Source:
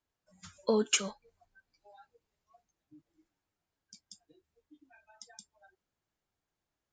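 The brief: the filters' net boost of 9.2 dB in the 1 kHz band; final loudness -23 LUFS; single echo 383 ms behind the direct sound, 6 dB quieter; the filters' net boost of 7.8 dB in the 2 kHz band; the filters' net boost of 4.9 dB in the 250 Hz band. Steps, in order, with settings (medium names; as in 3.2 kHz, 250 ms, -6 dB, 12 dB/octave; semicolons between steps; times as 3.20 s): peaking EQ 250 Hz +5.5 dB; peaking EQ 1 kHz +8.5 dB; peaking EQ 2 kHz +8.5 dB; delay 383 ms -6 dB; trim +4.5 dB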